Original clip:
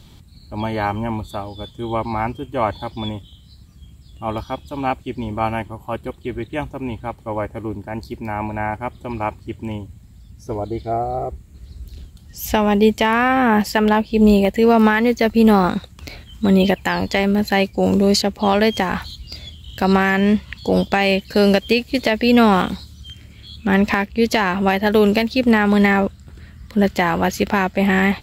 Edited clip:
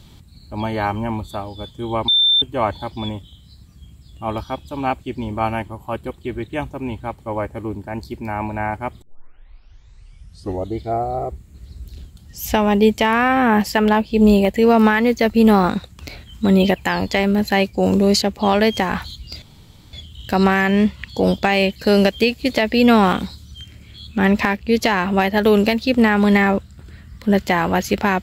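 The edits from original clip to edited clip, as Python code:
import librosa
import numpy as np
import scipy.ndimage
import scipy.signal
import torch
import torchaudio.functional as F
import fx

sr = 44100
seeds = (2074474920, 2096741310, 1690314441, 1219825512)

y = fx.edit(x, sr, fx.bleep(start_s=2.08, length_s=0.34, hz=3570.0, db=-11.5),
    fx.tape_start(start_s=9.02, length_s=1.75),
    fx.insert_room_tone(at_s=19.42, length_s=0.51), tone=tone)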